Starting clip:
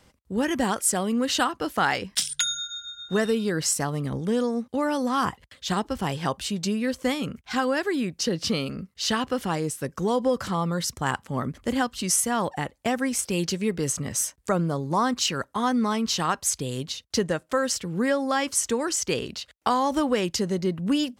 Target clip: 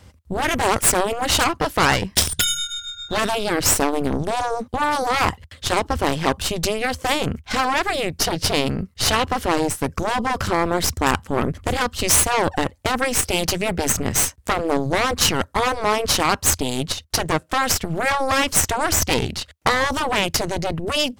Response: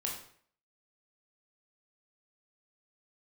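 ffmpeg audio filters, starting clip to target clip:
-af "aeval=exprs='0.398*(cos(1*acos(clip(val(0)/0.398,-1,1)))-cos(1*PI/2))+0.0708*(cos(8*acos(clip(val(0)/0.398,-1,1)))-cos(8*PI/2))':channel_layout=same,equalizer=frequency=82:width_type=o:width=1:gain=14.5,afftfilt=real='re*lt(hypot(re,im),0.501)':imag='im*lt(hypot(re,im),0.501)':win_size=1024:overlap=0.75,volume=6dB"

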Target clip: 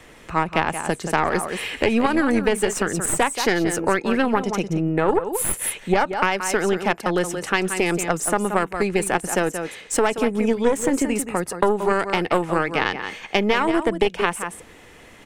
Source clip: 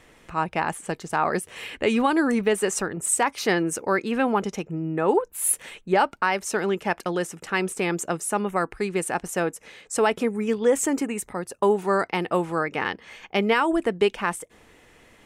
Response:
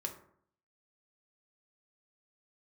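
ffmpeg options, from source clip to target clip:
-filter_complex "[0:a]aecho=1:1:177:0.299,aeval=exprs='0.398*(cos(1*acos(clip(val(0)/0.398,-1,1)))-cos(1*PI/2))+0.2*(cos(2*acos(clip(val(0)/0.398,-1,1)))-cos(2*PI/2))':channel_layout=same,acrossover=split=120|1400|2900[link_01][link_02][link_03][link_04];[link_04]alimiter=limit=-20.5dB:level=0:latency=1:release=107[link_05];[link_01][link_02][link_03][link_05]amix=inputs=4:normalize=0,acompressor=threshold=-24dB:ratio=3,volume=7dB"

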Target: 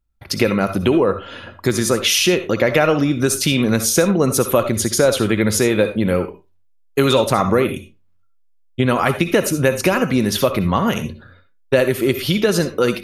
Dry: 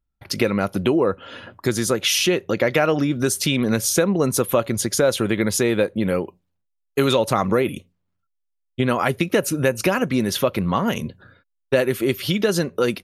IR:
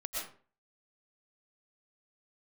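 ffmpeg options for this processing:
-filter_complex "[0:a]asplit=2[link_01][link_02];[1:a]atrim=start_sample=2205,asetrate=83790,aresample=44100,lowshelf=frequency=120:gain=9[link_03];[link_02][link_03]afir=irnorm=-1:irlink=0,volume=-2.5dB[link_04];[link_01][link_04]amix=inputs=2:normalize=0,volume=1dB"

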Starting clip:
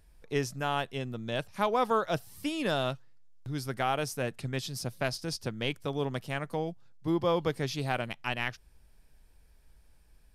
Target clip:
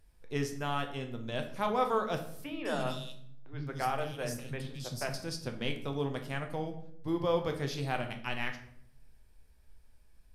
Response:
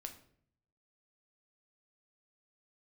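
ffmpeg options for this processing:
-filter_complex "[0:a]asettb=1/sr,asplit=3[link_01][link_02][link_03];[link_01]atrim=end=2.444[link_04];[link_02]atrim=start=2.44:end=5.14,asetpts=PTS-STARTPTS,afade=type=in:duration=0.004:curve=qsin,afade=type=out:start_time=2.696:duration=0.004:curve=qsin,acrossover=split=290|3100[link_05][link_06][link_07];[link_05]adelay=70[link_08];[link_07]adelay=210[link_09];[link_08][link_06][link_09]amix=inputs=3:normalize=0,atrim=end_sample=119070[link_10];[link_03]atrim=start=5.136[link_11];[link_04][link_10]acrossfade=duration=0.004:curve1=hsin:curve2=qsin[link_12];[link_12][link_11]acrossfade=duration=0.004:curve1=qsin:curve2=hsin[link_13];[1:a]atrim=start_sample=2205,asetrate=37044,aresample=44100[link_14];[link_13][link_14]afir=irnorm=-1:irlink=0"

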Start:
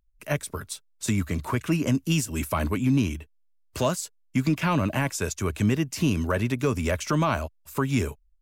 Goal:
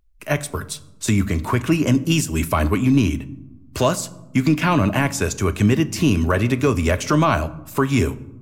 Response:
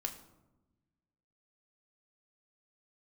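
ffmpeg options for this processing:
-filter_complex "[0:a]asplit=2[link_01][link_02];[1:a]atrim=start_sample=2205,highshelf=frequency=9400:gain=-10[link_03];[link_02][link_03]afir=irnorm=-1:irlink=0,volume=-2.5dB[link_04];[link_01][link_04]amix=inputs=2:normalize=0,volume=2.5dB"

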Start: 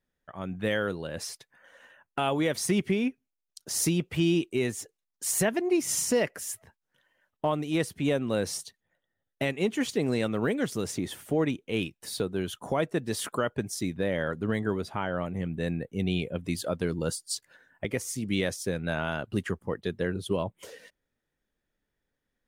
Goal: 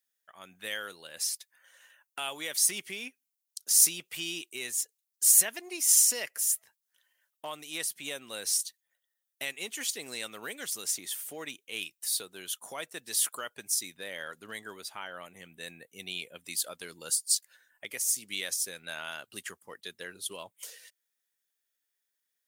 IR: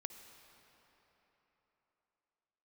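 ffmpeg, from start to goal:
-af "aderivative,volume=7.5dB"

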